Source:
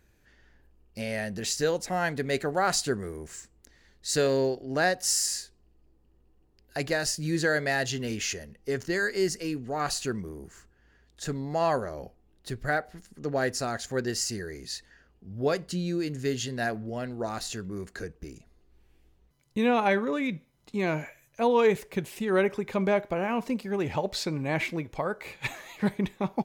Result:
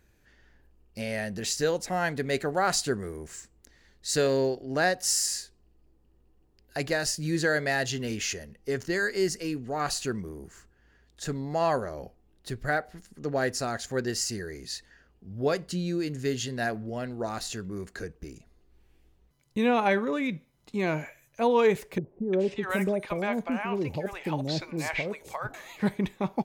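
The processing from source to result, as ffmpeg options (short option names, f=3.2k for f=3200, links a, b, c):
-filter_complex "[0:a]asettb=1/sr,asplit=3[a][b][c];[a]atrim=end=21.984[d];[b]atrim=start=21.98:end=25.54,asetpts=PTS-STARTPTS,afade=t=in:d=0.004:c=qsin,afade=t=out:st=3.556:d=0.004:c=qsin,acrossover=split=660|6000[e][f][g];[f]adelay=350[h];[g]adelay=650[i];[e][h][i]amix=inputs=3:normalize=0,atrim=end_sample=156996[j];[c]atrim=start=25.536[k];[d][j]acrossfade=d=0.004:c1=hsin:c2=qsin[l];[l][k]acrossfade=d=0.004:c1=qsin:c2=hsin"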